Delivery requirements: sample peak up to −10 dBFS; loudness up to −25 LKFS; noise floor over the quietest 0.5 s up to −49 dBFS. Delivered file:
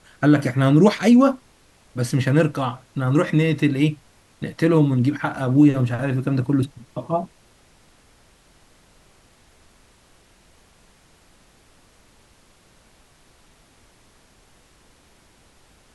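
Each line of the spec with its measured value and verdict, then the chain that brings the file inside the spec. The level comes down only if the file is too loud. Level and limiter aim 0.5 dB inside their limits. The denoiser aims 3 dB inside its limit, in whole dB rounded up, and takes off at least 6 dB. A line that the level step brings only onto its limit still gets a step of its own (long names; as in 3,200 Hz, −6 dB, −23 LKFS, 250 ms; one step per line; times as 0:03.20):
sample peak −5.0 dBFS: out of spec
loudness −19.5 LKFS: out of spec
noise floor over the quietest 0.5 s −55 dBFS: in spec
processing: level −6 dB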